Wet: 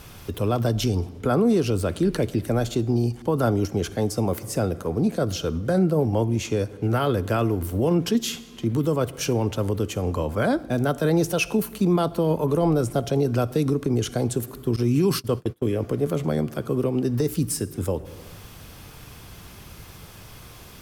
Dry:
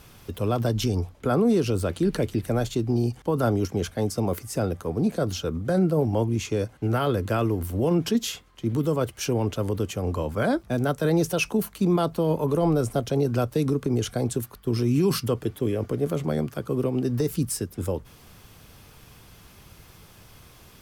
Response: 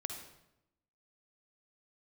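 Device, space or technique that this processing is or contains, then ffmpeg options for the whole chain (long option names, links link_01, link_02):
compressed reverb return: -filter_complex "[0:a]asplit=2[link_01][link_02];[1:a]atrim=start_sample=2205[link_03];[link_02][link_03]afir=irnorm=-1:irlink=0,acompressor=threshold=-38dB:ratio=4,volume=1.5dB[link_04];[link_01][link_04]amix=inputs=2:normalize=0,asettb=1/sr,asplit=3[link_05][link_06][link_07];[link_05]atrim=end=14.764[link_08];[link_06]atrim=start=14.76:end=15.7,asetpts=PTS-STARTPTS,afade=type=in:duration=0.004:curve=qsin,afade=type=out:start_time=0.936:duration=0.004:curve=qsin,agate=range=-28dB:threshold=-25dB:ratio=16:detection=peak[link_09];[link_07]atrim=start=15.696[link_10];[link_08][link_09]acrossfade=duration=0.004:curve1=hsin:curve2=qsin[link_11];[link_11][link_10]acrossfade=duration=0.004:curve1=qsin:curve2=hsin"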